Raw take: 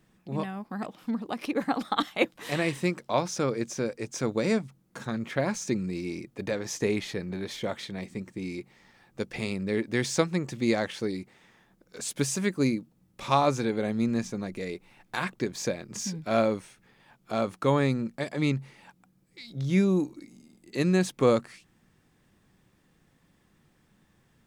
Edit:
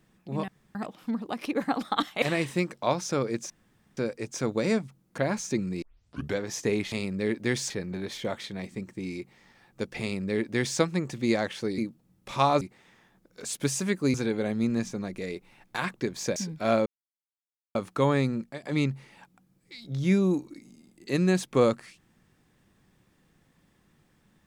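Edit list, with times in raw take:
0:00.48–0:00.75: fill with room tone
0:02.22–0:02.49: remove
0:03.77: splice in room tone 0.47 s
0:04.98–0:05.35: remove
0:05.99: tape start 0.57 s
0:09.40–0:10.18: duplicate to 0:07.09
0:12.70–0:13.53: move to 0:11.17
0:15.75–0:16.02: remove
0:16.52–0:17.41: silence
0:18.04–0:18.29: fade out, to −13.5 dB

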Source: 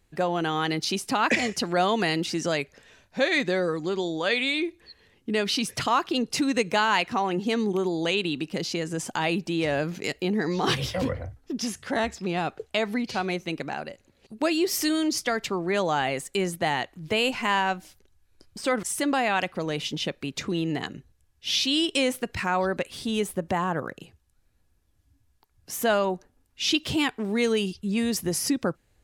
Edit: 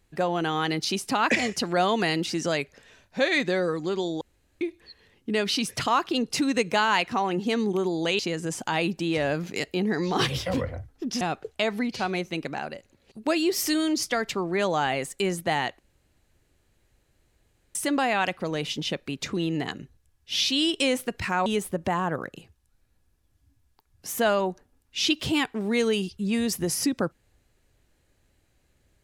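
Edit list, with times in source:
0:04.21–0:04.61: fill with room tone
0:08.19–0:08.67: remove
0:11.69–0:12.36: remove
0:16.94–0:18.90: fill with room tone
0:22.61–0:23.10: remove

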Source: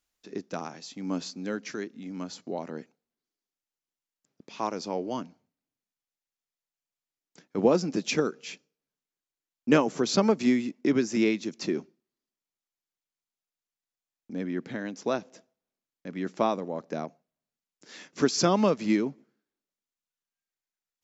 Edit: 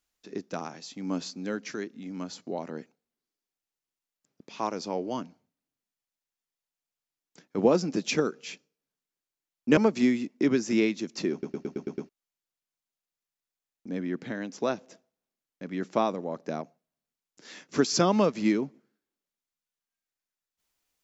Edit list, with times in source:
0:09.77–0:10.21: remove
0:11.76: stutter in place 0.11 s, 7 plays

